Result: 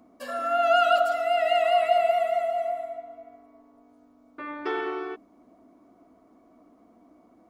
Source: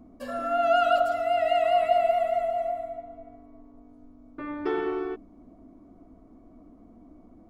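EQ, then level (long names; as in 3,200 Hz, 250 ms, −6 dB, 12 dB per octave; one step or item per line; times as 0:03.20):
high-pass filter 910 Hz 6 dB per octave
+5.0 dB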